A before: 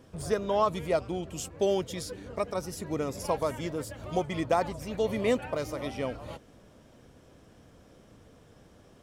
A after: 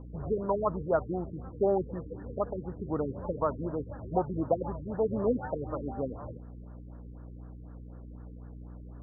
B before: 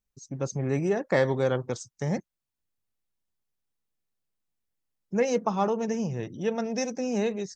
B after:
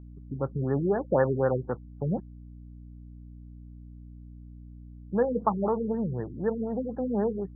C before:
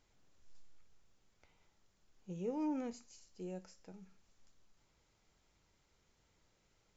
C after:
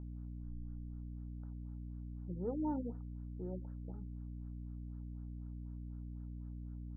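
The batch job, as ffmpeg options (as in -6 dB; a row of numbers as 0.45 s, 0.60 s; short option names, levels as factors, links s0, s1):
-af "aeval=exprs='val(0)+0.00631*(sin(2*PI*60*n/s)+sin(2*PI*2*60*n/s)/2+sin(2*PI*3*60*n/s)/3+sin(2*PI*4*60*n/s)/4+sin(2*PI*5*60*n/s)/5)':c=same,superequalizer=9b=1.58:10b=1.58:16b=3.16,afftfilt=real='re*lt(b*sr/1024,450*pow(1900/450,0.5+0.5*sin(2*PI*4*pts/sr)))':imag='im*lt(b*sr/1024,450*pow(1900/450,0.5+0.5*sin(2*PI*4*pts/sr)))':win_size=1024:overlap=0.75"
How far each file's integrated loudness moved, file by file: -1.5 LU, -0.5 LU, -3.5 LU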